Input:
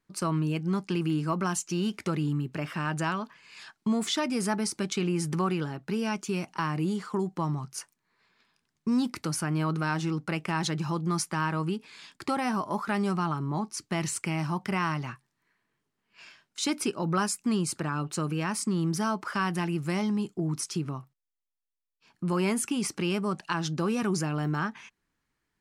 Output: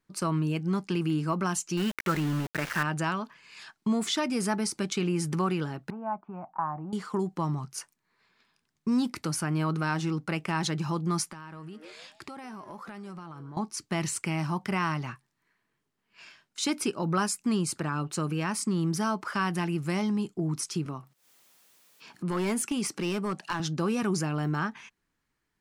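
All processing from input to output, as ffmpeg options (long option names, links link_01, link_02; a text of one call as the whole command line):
ffmpeg -i in.wav -filter_complex "[0:a]asettb=1/sr,asplit=3[link_01][link_02][link_03];[link_01]atrim=end=1.774[link_04];[link_02]atrim=start=1.77:end=2.83,asetpts=PTS-STARTPTS,afade=type=in:duration=0.004:curve=qsin,afade=type=out:start_time=1.056:duration=0.004:curve=qsin,lowpass=3100,equalizer=frequency=1700:width=1.4:gain=12,aeval=exprs='val(0)*gte(abs(val(0)),0.0237)':channel_layout=same[link_05];[link_03]atrim=start=2.826[link_06];[link_04][link_05]acrossfade=duration=0.004:curve1=hsin:curve2=qsin[link_07];[link_07][link_06]acrossfade=duration=0.004:curve1=qsin:curve2=hsin,asettb=1/sr,asplit=3[link_08][link_09][link_10];[link_08]atrim=end=5.904[link_11];[link_09]atrim=start=5.9:end=6.93,asetpts=PTS-STARTPTS,afade=type=in:duration=0.004:curve=qsin,afade=type=out:start_time=1.026:duration=0.004:curve=qsin,lowpass=frequency=1100:width=0.5412,lowpass=frequency=1100:width=1.3066,lowshelf=frequency=560:width_type=q:width=3:gain=-8.5[link_12];[link_10]atrim=start=6.926[link_13];[link_11][link_12]acrossfade=duration=0.004:curve1=hsin:curve2=qsin[link_14];[link_14][link_13]acrossfade=duration=0.004:curve1=qsin:curve2=hsin,asettb=1/sr,asplit=3[link_15][link_16][link_17];[link_15]atrim=end=11.304[link_18];[link_16]atrim=start=11.3:end=13.57,asetpts=PTS-STARTPTS,afade=type=in:duration=0.004:curve=qsin,afade=type=out:start_time=2.266:duration=0.004:curve=qsin,asplit=4[link_19][link_20][link_21][link_22];[link_20]adelay=147,afreqshift=150,volume=-19.5dB[link_23];[link_21]adelay=294,afreqshift=300,volume=-27.2dB[link_24];[link_22]adelay=441,afreqshift=450,volume=-35dB[link_25];[link_19][link_23][link_24][link_25]amix=inputs=4:normalize=0,atrim=end_sample=100107,acompressor=threshold=-39dB:ratio=8:attack=3.2:release=140:knee=1:detection=peak[link_26];[link_17]atrim=start=13.566[link_27];[link_18][link_26]acrossfade=duration=0.004:curve1=hsin:curve2=qsin[link_28];[link_28][link_27]acrossfade=duration=0.004:curve1=qsin:curve2=hsin,asettb=1/sr,asplit=3[link_29][link_30][link_31];[link_29]atrim=end=20.864[link_32];[link_30]atrim=start=20.86:end=23.6,asetpts=PTS-STARTPTS,afade=type=in:duration=0.004:curve=qsin,afade=type=out:start_time=2.736:duration=0.004:curve=qsin,highpass=150,acompressor=mode=upward:threshold=-37dB:ratio=2.5:attack=3.2:release=140:knee=2.83:detection=peak,aeval=exprs='clip(val(0),-1,0.0631)':channel_layout=same[link_33];[link_31]atrim=start=23.596[link_34];[link_32][link_33]acrossfade=duration=0.004:curve1=hsin:curve2=qsin[link_35];[link_35][link_34]acrossfade=duration=0.004:curve1=qsin:curve2=hsin" out.wav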